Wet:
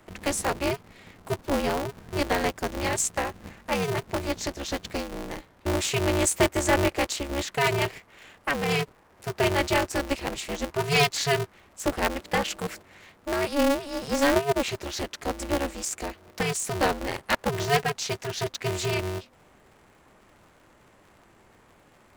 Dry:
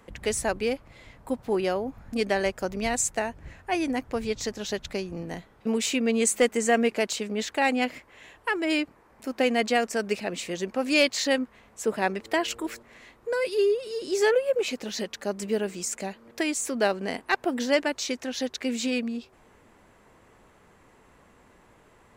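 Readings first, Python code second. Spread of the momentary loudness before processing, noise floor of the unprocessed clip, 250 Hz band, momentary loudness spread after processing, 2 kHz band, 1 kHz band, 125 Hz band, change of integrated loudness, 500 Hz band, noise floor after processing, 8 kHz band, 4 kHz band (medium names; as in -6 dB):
11 LU, -58 dBFS, -1.5 dB, 12 LU, +0.5 dB, +2.5 dB, +11.5 dB, 0.0 dB, -1.5 dB, -58 dBFS, +0.5 dB, +1.5 dB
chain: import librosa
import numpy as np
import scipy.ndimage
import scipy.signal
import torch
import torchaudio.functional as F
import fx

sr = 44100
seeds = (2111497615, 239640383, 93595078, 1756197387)

y = x * np.sign(np.sin(2.0 * np.pi * 140.0 * np.arange(len(x)) / sr))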